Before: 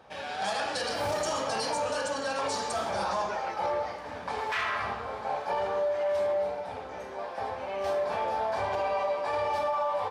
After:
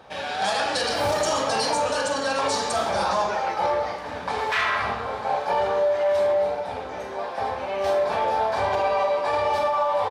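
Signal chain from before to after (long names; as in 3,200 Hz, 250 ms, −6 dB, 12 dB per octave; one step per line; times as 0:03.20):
parametric band 3,800 Hz +3 dB 0.26 octaves
double-tracking delay 43 ms −12.5 dB
level +6.5 dB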